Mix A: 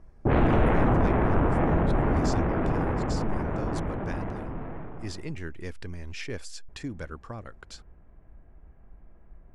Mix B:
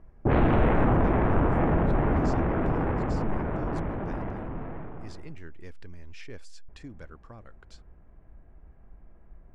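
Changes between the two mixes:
speech -8.5 dB; master: add treble shelf 8.1 kHz -8 dB

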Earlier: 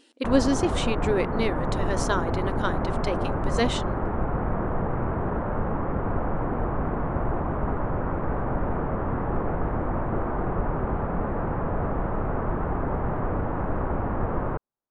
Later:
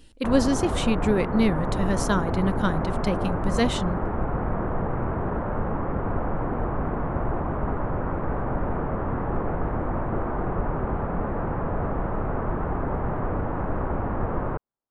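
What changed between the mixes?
speech: remove brick-wall FIR high-pass 230 Hz; master: remove Savitzky-Golay filter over 9 samples

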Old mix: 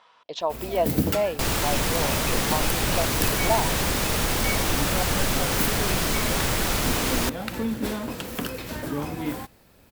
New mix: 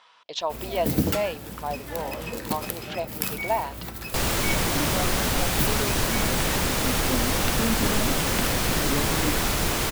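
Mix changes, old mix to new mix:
speech: add tilt shelf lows -5 dB, about 1.1 kHz; second sound: entry +2.75 s

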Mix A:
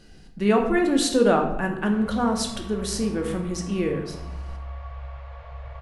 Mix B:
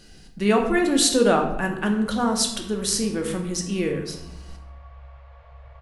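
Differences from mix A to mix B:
speech: add treble shelf 3 kHz +8.5 dB; background -7.5 dB

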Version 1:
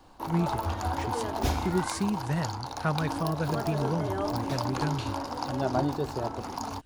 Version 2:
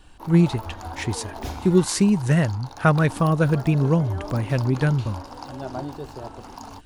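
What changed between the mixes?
speech +11.0 dB; background -4.5 dB

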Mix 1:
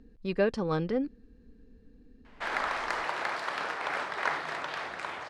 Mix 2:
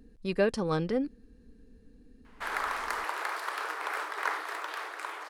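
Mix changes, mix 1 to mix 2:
background: add rippled Chebyshev high-pass 300 Hz, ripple 6 dB; master: remove distance through air 98 m

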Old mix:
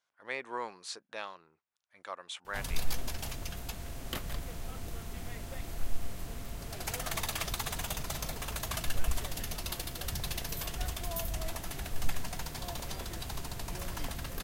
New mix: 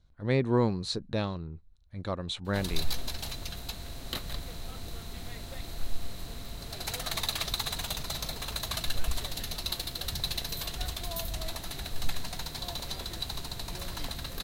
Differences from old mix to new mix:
speech: remove high-pass 1 kHz 12 dB/octave; master: add peaking EQ 4 kHz +14 dB 0.27 oct

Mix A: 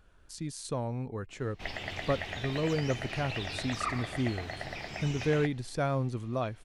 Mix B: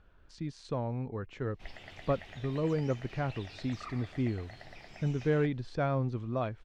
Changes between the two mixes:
speech: add distance through air 190 m; background -11.5 dB

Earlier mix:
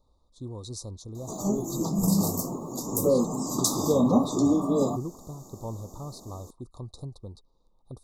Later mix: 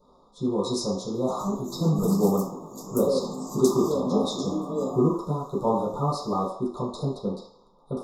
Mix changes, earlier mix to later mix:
background -9.0 dB; reverb: on, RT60 0.60 s

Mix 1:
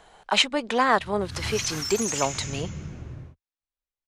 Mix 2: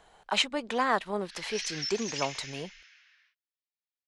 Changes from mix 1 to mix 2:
speech -6.0 dB; background: add elliptic band-pass 1.7–5.3 kHz, stop band 70 dB

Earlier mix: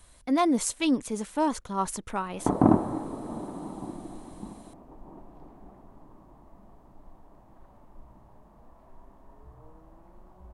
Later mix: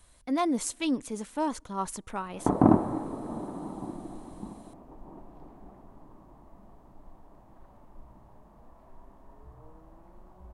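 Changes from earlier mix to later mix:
speech -4.0 dB; reverb: on, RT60 2.0 s

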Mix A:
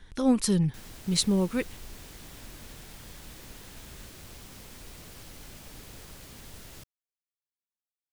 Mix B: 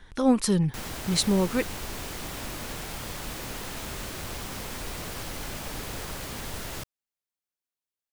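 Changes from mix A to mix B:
background +9.5 dB; master: add peaking EQ 960 Hz +5.5 dB 2.5 oct

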